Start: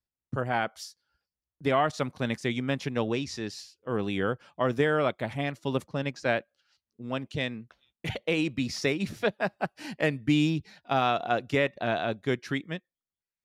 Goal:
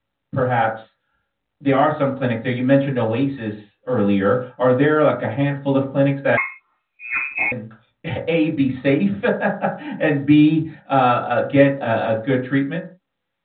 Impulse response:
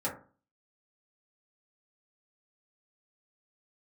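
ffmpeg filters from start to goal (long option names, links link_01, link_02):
-filter_complex "[1:a]atrim=start_sample=2205,afade=type=out:start_time=0.25:duration=0.01,atrim=end_sample=11466[link_01];[0:a][link_01]afir=irnorm=-1:irlink=0,asettb=1/sr,asplit=3[link_02][link_03][link_04];[link_02]atrim=end=6.374[link_05];[link_03]atrim=start=6.37:end=7.52,asetpts=PTS-STARTPTS,afade=type=in:duration=0.004:curve=qsin,afade=type=out:start_time=1.146:duration=0.004:curve=qsin,lowpass=frequency=2300:width_type=q:width=0.5098,lowpass=frequency=2300:width_type=q:width=0.6013,lowpass=frequency=2300:width_type=q:width=0.9,lowpass=frequency=2300:width_type=q:width=2.563,afreqshift=-2700[link_06];[link_04]atrim=start=7.516[link_07];[link_05][link_06]acrossfade=duration=0.004:curve1=hsin:curve2=qsin[link_08];[link_08][link_07]acrossfade=duration=0.004:curve1=qsin:curve2=hsin,volume=2.5dB" -ar 8000 -c:a pcm_mulaw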